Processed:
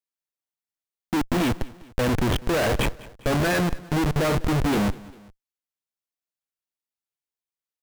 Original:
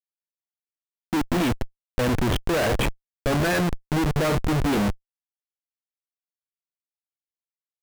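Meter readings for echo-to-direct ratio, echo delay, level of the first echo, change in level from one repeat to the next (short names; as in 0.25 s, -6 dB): -20.0 dB, 0.2 s, -21.0 dB, -5.5 dB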